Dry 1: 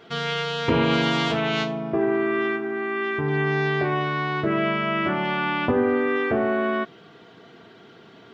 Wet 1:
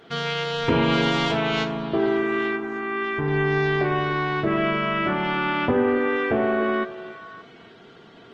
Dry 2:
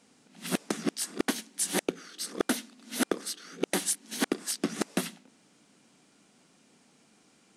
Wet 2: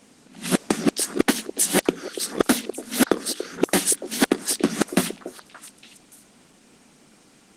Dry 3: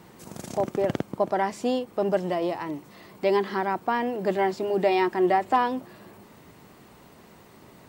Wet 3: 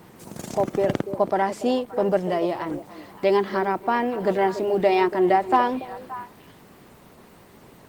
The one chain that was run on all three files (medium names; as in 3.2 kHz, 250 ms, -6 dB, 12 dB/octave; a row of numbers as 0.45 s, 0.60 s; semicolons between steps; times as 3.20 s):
repeats whose band climbs or falls 287 ms, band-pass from 460 Hz, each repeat 1.4 oct, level -9.5 dB; Opus 20 kbps 48 kHz; normalise loudness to -23 LUFS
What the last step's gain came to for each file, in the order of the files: +0.5 dB, +10.0 dB, +3.0 dB